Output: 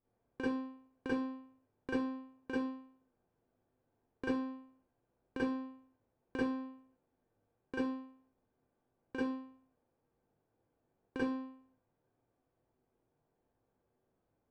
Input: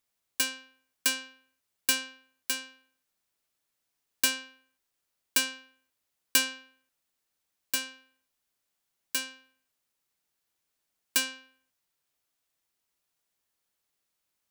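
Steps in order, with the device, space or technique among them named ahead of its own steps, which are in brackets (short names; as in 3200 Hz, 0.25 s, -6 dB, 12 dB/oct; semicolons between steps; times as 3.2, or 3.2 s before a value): television next door (compressor, threshold -29 dBFS, peak gain reduction 11 dB; LPF 540 Hz 12 dB/oct; reverb RT60 0.30 s, pre-delay 35 ms, DRR -8.5 dB); gain +7.5 dB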